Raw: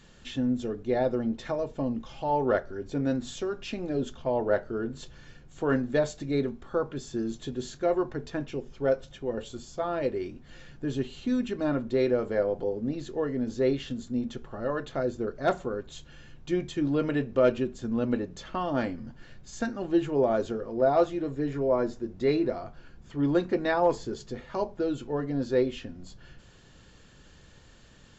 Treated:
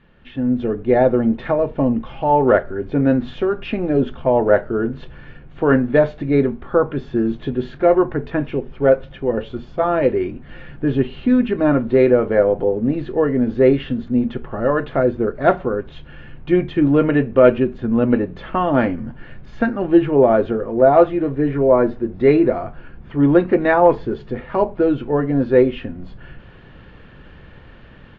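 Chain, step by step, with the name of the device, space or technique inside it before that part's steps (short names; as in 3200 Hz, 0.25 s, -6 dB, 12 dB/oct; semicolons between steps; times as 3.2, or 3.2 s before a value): action camera in a waterproof case (LPF 2700 Hz 24 dB/oct; AGC gain up to 11 dB; gain +1.5 dB; AAC 48 kbps 16000 Hz)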